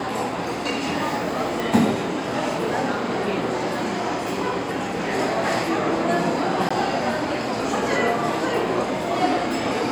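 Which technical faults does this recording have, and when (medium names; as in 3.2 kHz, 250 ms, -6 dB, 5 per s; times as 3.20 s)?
1.60 s: pop
6.69–6.71 s: dropout 15 ms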